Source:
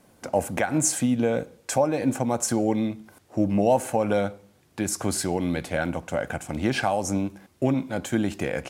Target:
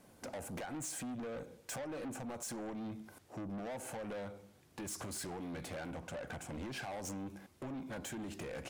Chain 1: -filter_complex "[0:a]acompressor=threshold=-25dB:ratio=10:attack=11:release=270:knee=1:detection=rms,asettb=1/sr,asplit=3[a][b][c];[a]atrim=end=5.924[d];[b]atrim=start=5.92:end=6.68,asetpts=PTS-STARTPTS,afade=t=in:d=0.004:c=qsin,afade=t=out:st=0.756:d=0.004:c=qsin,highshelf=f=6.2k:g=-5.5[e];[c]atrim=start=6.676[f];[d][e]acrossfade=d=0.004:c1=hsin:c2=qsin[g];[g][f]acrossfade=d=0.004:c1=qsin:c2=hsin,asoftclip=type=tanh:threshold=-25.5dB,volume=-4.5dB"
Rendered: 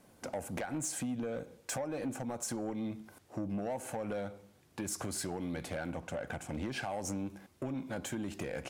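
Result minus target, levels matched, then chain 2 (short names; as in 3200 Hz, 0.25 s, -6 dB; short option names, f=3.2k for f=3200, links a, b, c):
soft clip: distortion -8 dB
-filter_complex "[0:a]acompressor=threshold=-25dB:ratio=10:attack=11:release=270:knee=1:detection=rms,asettb=1/sr,asplit=3[a][b][c];[a]atrim=end=5.924[d];[b]atrim=start=5.92:end=6.68,asetpts=PTS-STARTPTS,afade=t=in:d=0.004:c=qsin,afade=t=out:st=0.756:d=0.004:c=qsin,highshelf=f=6.2k:g=-5.5[e];[c]atrim=start=6.676[f];[d][e]acrossfade=d=0.004:c1=hsin:c2=qsin[g];[g][f]acrossfade=d=0.004:c1=qsin:c2=hsin,asoftclip=type=tanh:threshold=-35dB,volume=-4.5dB"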